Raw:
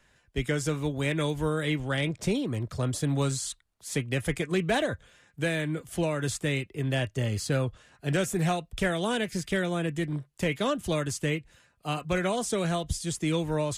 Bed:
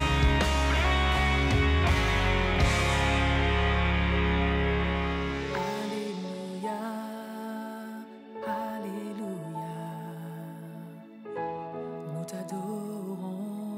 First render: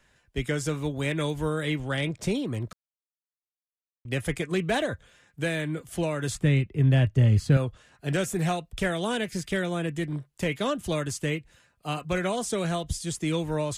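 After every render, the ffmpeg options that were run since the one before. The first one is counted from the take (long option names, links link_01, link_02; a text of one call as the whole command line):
ffmpeg -i in.wav -filter_complex "[0:a]asettb=1/sr,asplit=3[link_01][link_02][link_03];[link_01]atrim=end=6.354[link_04];[link_02]atrim=start=6.35:end=7.57,asetpts=PTS-STARTPTS,afade=type=in:duration=0.004:curve=qsin,afade=type=out:start_time=1.216:duration=0.004:curve=qsin,bass=frequency=250:gain=11,treble=frequency=4000:gain=-8[link_05];[link_03]atrim=start=7.566[link_06];[link_04][link_05]acrossfade=duration=0.004:curve1=hsin:curve2=qsin[link_07];[link_07][link_06]acrossfade=duration=0.004:curve1=qsin:curve2=hsin,asplit=3[link_08][link_09][link_10];[link_08]atrim=end=2.73,asetpts=PTS-STARTPTS,afade=type=out:start_time=2.726:duration=0.004:curve=hsin[link_11];[link_09]atrim=start=2.73:end=4.05,asetpts=PTS-STARTPTS,volume=0[link_12];[link_10]atrim=start=4.05,asetpts=PTS-STARTPTS,afade=type=in:duration=0.004:curve=hsin[link_13];[link_11][link_12][link_13]concat=n=3:v=0:a=1" out.wav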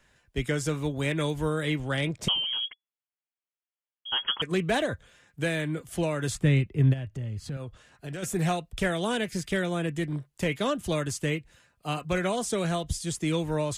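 ffmpeg -i in.wav -filter_complex "[0:a]asettb=1/sr,asplit=3[link_01][link_02][link_03];[link_01]atrim=end=2.284[link_04];[link_02]atrim=start=2.28:end=4.42,asetpts=PTS-STARTPTS,afade=type=in:duration=0.004:curve=qsin,afade=type=out:start_time=2.136:duration=0.004:curve=qsin,lowpass=frequency=2900:width_type=q:width=0.5098,lowpass=frequency=2900:width_type=q:width=0.6013,lowpass=frequency=2900:width_type=q:width=0.9,lowpass=frequency=2900:width_type=q:width=2.563,afreqshift=-3400[link_05];[link_03]atrim=start=4.416[link_06];[link_04][link_05]acrossfade=duration=0.004:curve1=hsin:curve2=qsin[link_07];[link_07][link_06]acrossfade=duration=0.004:curve1=qsin:curve2=hsin,asplit=3[link_08][link_09][link_10];[link_08]afade=type=out:start_time=6.92:duration=0.02[link_11];[link_09]acompressor=threshold=-36dB:ratio=3:attack=3.2:release=140:knee=1:detection=peak,afade=type=in:start_time=6.92:duration=0.02,afade=type=out:start_time=8.22:duration=0.02[link_12];[link_10]afade=type=in:start_time=8.22:duration=0.02[link_13];[link_11][link_12][link_13]amix=inputs=3:normalize=0" out.wav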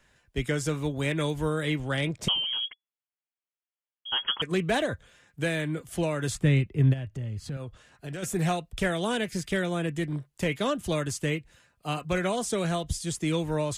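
ffmpeg -i in.wav -af anull out.wav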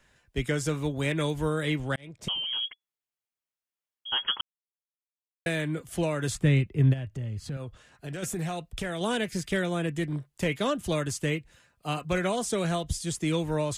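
ffmpeg -i in.wav -filter_complex "[0:a]asettb=1/sr,asplit=3[link_01][link_02][link_03];[link_01]atrim=end=8.314[link_04];[link_02]atrim=start=8.31:end=9.01,asetpts=PTS-STARTPTS,afade=type=in:duration=0.004:curve=qsin,afade=type=out:start_time=0.696:duration=0.004:curve=qsin,acompressor=threshold=-28dB:ratio=6:attack=3.2:release=140:knee=1:detection=peak[link_05];[link_03]atrim=start=9.006[link_06];[link_04][link_05]acrossfade=duration=0.004:curve1=hsin:curve2=qsin[link_07];[link_07][link_06]acrossfade=duration=0.004:curve1=qsin:curve2=hsin,asplit=4[link_08][link_09][link_10][link_11];[link_08]atrim=end=1.96,asetpts=PTS-STARTPTS,afade=type=out:start_time=1.956:duration=0.004:curve=hsin[link_12];[link_09]atrim=start=1.96:end=4.41,asetpts=PTS-STARTPTS,afade=type=in:duration=0.63,afade=type=out:start_time=2.446:duration=0.004:curve=hsin[link_13];[link_10]atrim=start=4.41:end=5.46,asetpts=PTS-STARTPTS,volume=0[link_14];[link_11]atrim=start=5.46,asetpts=PTS-STARTPTS,afade=type=in:duration=0.004:curve=hsin[link_15];[link_12][link_13][link_14][link_15]concat=n=4:v=0:a=1" out.wav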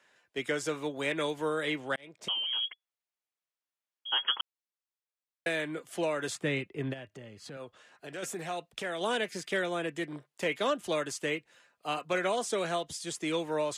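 ffmpeg -i in.wav -af "highpass=370,highshelf=frequency=7900:gain=-9" out.wav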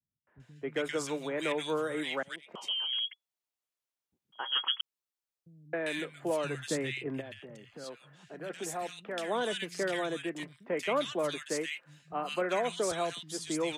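ffmpeg -i in.wav -filter_complex "[0:a]acrossover=split=150|1800[link_01][link_02][link_03];[link_02]adelay=270[link_04];[link_03]adelay=400[link_05];[link_01][link_04][link_05]amix=inputs=3:normalize=0" out.wav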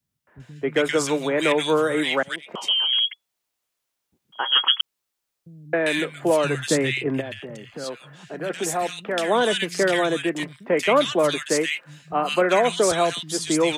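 ffmpeg -i in.wav -af "volume=12dB" out.wav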